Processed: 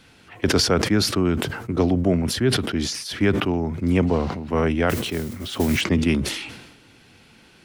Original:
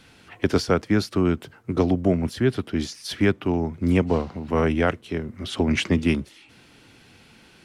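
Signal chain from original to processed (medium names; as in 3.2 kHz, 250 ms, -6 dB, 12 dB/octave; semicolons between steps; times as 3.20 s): 4.89–5.81 s: modulation noise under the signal 16 dB; decay stretcher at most 51 dB/s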